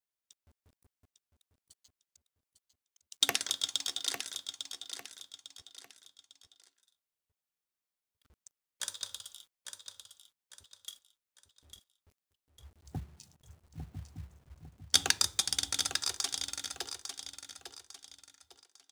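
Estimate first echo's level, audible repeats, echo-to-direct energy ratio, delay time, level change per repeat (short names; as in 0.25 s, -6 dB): -8.0 dB, 3, -7.5 dB, 0.851 s, -9.0 dB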